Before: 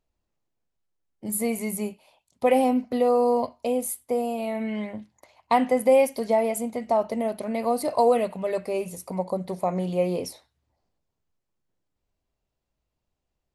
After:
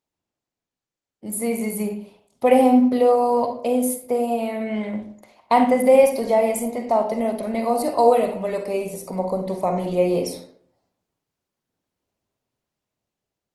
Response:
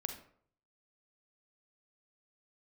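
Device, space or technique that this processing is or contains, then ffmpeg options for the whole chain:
far-field microphone of a smart speaker: -filter_complex "[1:a]atrim=start_sample=2205[a];[0:a][a]afir=irnorm=-1:irlink=0,highpass=120,dynaudnorm=f=450:g=7:m=6dB" -ar 48000 -c:a libopus -b:a 20k

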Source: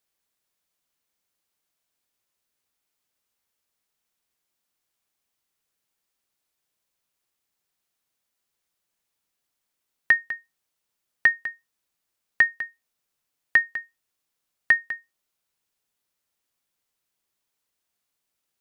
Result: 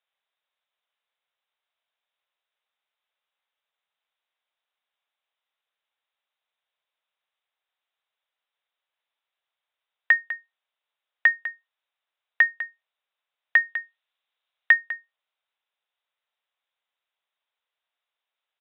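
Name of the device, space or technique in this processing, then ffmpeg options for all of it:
musical greeting card: -filter_complex "[0:a]asplit=3[a][b][c];[a]afade=t=out:st=13.64:d=0.02[d];[b]highshelf=f=3.2k:g=7.5,afade=t=in:st=13.64:d=0.02,afade=t=out:st=14.73:d=0.02[e];[c]afade=t=in:st=14.73:d=0.02[f];[d][e][f]amix=inputs=3:normalize=0,aresample=8000,aresample=44100,highpass=f=550:w=0.5412,highpass=f=550:w=1.3066,equalizer=f=3.8k:t=o:w=0.25:g=5.5"

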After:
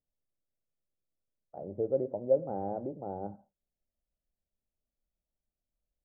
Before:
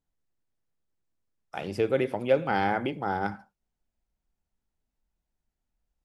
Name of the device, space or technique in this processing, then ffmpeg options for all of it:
under water: -af "lowpass=f=690:w=0.5412,lowpass=f=690:w=1.3066,equalizer=f=590:t=o:w=0.46:g=8.5,volume=-8dB"

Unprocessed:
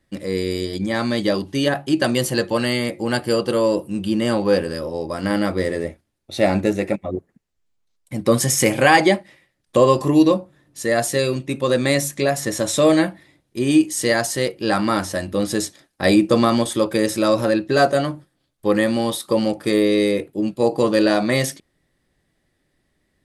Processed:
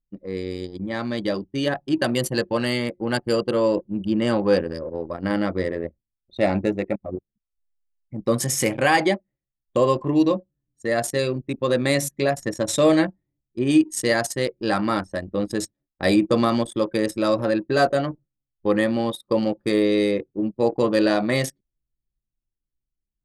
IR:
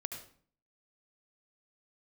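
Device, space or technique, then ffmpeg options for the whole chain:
voice memo with heavy noise removal: -af "anlmdn=631,dynaudnorm=f=250:g=13:m=11.5dB,volume=-6dB"

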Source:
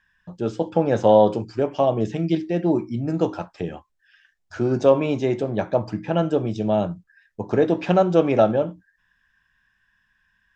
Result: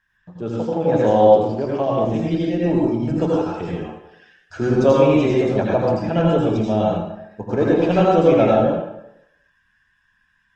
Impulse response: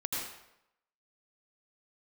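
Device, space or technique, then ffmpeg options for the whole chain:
speakerphone in a meeting room: -filter_complex "[0:a]asplit=3[a][b][c];[a]afade=t=out:st=1.53:d=0.02[d];[b]highshelf=f=5.8k:g=-5,afade=t=in:st=1.53:d=0.02,afade=t=out:st=2.13:d=0.02[e];[c]afade=t=in:st=2.13:d=0.02[f];[d][e][f]amix=inputs=3:normalize=0[g];[1:a]atrim=start_sample=2205[h];[g][h]afir=irnorm=-1:irlink=0,dynaudnorm=f=450:g=9:m=15dB,volume=-1.5dB" -ar 48000 -c:a libopus -b:a 20k

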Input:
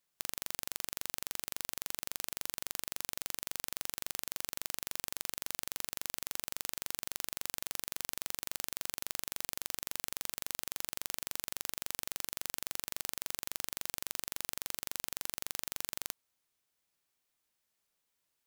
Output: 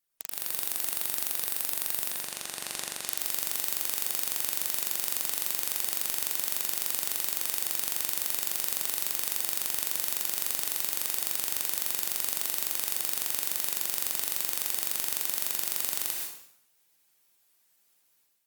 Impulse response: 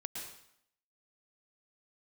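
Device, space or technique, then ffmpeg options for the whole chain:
far-field microphone of a smart speaker: -filter_complex "[0:a]asplit=3[a][b][c];[a]afade=t=out:st=2.07:d=0.02[d];[b]lowpass=8.6k,afade=t=in:st=2.07:d=0.02,afade=t=out:st=3.05:d=0.02[e];[c]afade=t=in:st=3.05:d=0.02[f];[d][e][f]amix=inputs=3:normalize=0,highshelf=f=7.8k:g=8[g];[1:a]atrim=start_sample=2205[h];[g][h]afir=irnorm=-1:irlink=0,highpass=f=140:p=1,dynaudnorm=f=280:g=3:m=10dB" -ar 48000 -c:a libopus -b:a 32k

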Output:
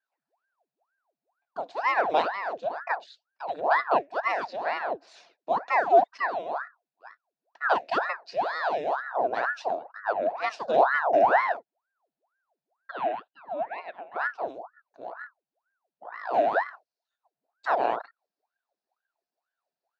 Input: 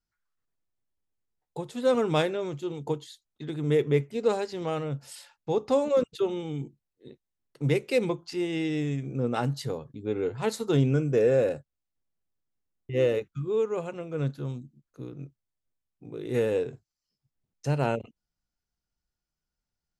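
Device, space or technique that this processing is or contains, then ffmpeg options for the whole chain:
voice changer toy: -filter_complex "[0:a]asettb=1/sr,asplit=3[a][b][c];[a]atrim=end=12.914[d];[b]atrim=start=12.91:end=14.16,asetpts=PTS-STARTPTS,afade=t=in:d=0.004:c=qsin,afade=t=out:st=1.246:d=0.004:c=qsin,acrossover=split=550 2900:gain=0.112 1 0.0794[e][f][g];[e][f][g]amix=inputs=3:normalize=0[h];[c]atrim=start=14.156[i];[d][h]acrossfade=d=0.004:c1=hsin:c2=qsin[j];[j][i]acrossfade=d=0.004:c1=qsin:c2=hsin,aeval=exprs='val(0)*sin(2*PI*870*n/s+870*0.85/2.1*sin(2*PI*2.1*n/s))':c=same,highpass=570,equalizer=f=690:t=q:w=4:g=9,equalizer=f=1.2k:t=q:w=4:g=-8,equalizer=f=2.1k:t=q:w=4:g=-8,equalizer=f=3.2k:t=q:w=4:g=-10,lowpass=f=4.3k:w=0.5412,lowpass=f=4.3k:w=1.3066,volume=5.5dB"

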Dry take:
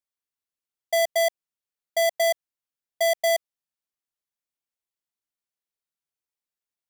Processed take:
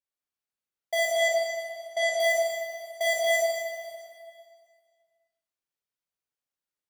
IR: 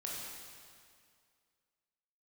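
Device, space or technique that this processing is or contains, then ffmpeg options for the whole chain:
swimming-pool hall: -filter_complex "[0:a]asettb=1/sr,asplit=3[a][b][c];[a]atrim=end=1.164[d];[b]atrim=start=1.16:end=2.16,asetpts=PTS-STARTPTS,afade=t=in:d=0.004:c=qsin,afade=t=out:st=0.996:d=0.004:c=qsin,lowpass=7.5k[e];[c]atrim=start=2.156[f];[d][e]acrossfade=d=0.004:c1=hsin:c2=qsin[g];[g][f]acrossfade=d=0.004:c1=qsin:c2=hsin[h];[1:a]atrim=start_sample=2205[i];[h][i]afir=irnorm=-1:irlink=0,highshelf=f=4.7k:g=-5"

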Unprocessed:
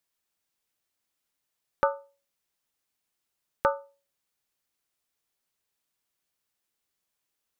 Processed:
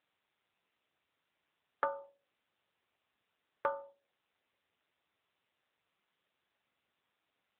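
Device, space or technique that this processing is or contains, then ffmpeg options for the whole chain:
voicemail: -af "highpass=310,lowpass=3k,acompressor=threshold=-28dB:ratio=10,volume=1dB" -ar 8000 -c:a libopencore_amrnb -b:a 7950

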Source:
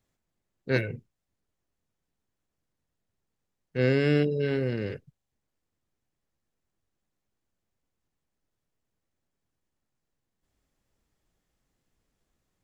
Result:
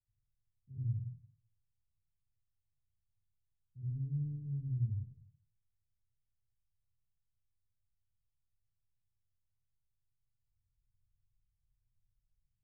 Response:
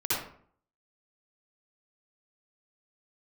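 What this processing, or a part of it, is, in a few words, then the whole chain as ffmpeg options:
club heard from the street: -filter_complex "[0:a]alimiter=limit=-16dB:level=0:latency=1:release=26,lowpass=f=120:w=0.5412,lowpass=f=120:w=1.3066[a];[1:a]atrim=start_sample=2205[b];[a][b]afir=irnorm=-1:irlink=0,asettb=1/sr,asplit=3[c][d][e];[c]atrim=end=4.074[f];[d]atrim=start=4.07:end=4.77,asetpts=PTS-STARTPTS,afade=t=in:d=0.004:c=qsin,afade=t=out:st=0.696:d=0.004:c=qsin,equalizer=f=1k:w=1.5:g=9[g];[e]atrim=start=4.766[h];[f][g]acrossfade=d=0.004:c1=hsin:c2=qsin[i];[i][h]acrossfade=d=0.004:c1=qsin:c2=hsin,volume=-9dB"

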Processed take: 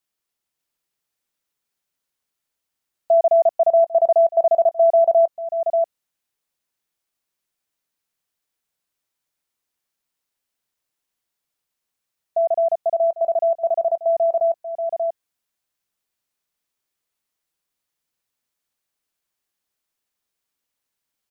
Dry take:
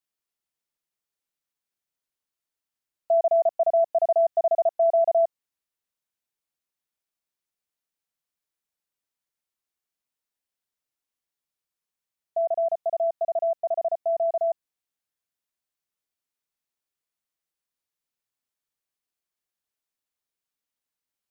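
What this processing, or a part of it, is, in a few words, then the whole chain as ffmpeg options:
ducked delay: -filter_complex "[0:a]asplit=3[a][b][c];[b]adelay=586,volume=-4dB[d];[c]apad=whole_len=965609[e];[d][e]sidechaincompress=threshold=-39dB:ratio=4:attack=16:release=338[f];[a][f]amix=inputs=2:normalize=0,volume=5.5dB"

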